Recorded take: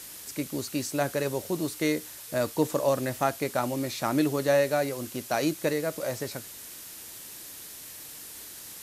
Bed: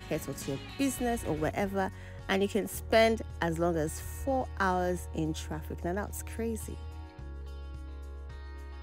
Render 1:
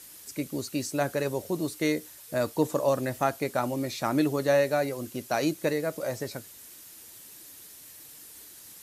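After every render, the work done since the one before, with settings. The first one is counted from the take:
broadband denoise 7 dB, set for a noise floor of −44 dBFS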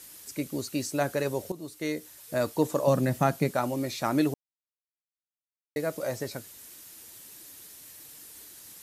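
0:01.52–0:02.33: fade in, from −13.5 dB
0:02.87–0:03.51: parametric band 170 Hz +14.5 dB 0.88 octaves
0:04.34–0:05.76: silence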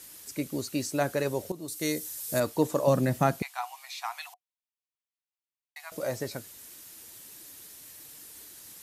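0:01.68–0:02.40: bass and treble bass +3 dB, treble +12 dB
0:03.42–0:05.92: Chebyshev high-pass with heavy ripple 710 Hz, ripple 6 dB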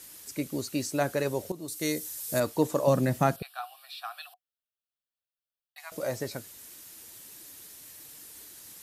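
0:03.36–0:05.78: phaser with its sweep stopped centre 1,400 Hz, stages 8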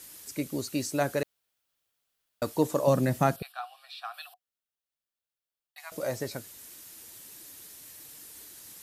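0:01.23–0:02.42: fill with room tone
0:03.52–0:04.14: high-frequency loss of the air 51 metres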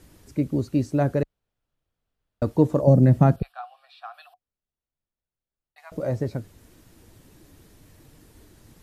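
spectral tilt −4.5 dB per octave
0:02.81–0:03.03: gain on a spectral selection 910–4,100 Hz −12 dB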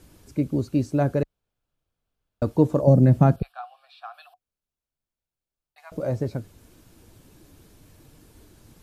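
notch filter 1,900 Hz, Q 12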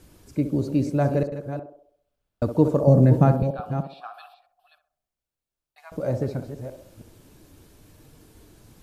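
delay that plays each chunk backwards 319 ms, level −10 dB
on a send: feedback echo with a band-pass in the loop 65 ms, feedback 53%, band-pass 540 Hz, level −7 dB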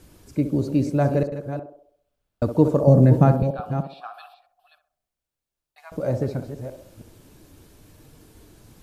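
level +1.5 dB

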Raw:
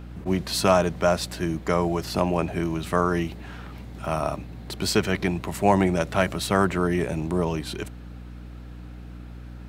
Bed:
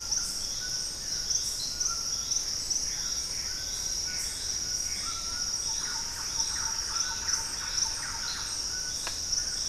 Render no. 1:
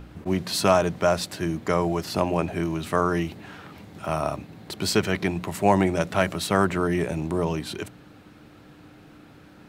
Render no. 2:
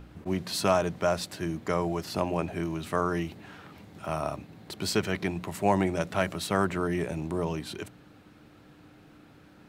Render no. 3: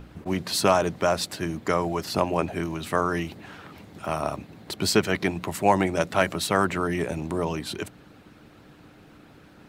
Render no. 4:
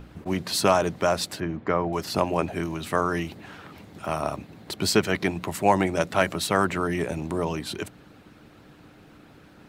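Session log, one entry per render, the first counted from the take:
hum removal 60 Hz, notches 4
level −5 dB
harmonic and percussive parts rebalanced percussive +7 dB
0:01.40–0:01.93: low-pass filter 2,200 Hz

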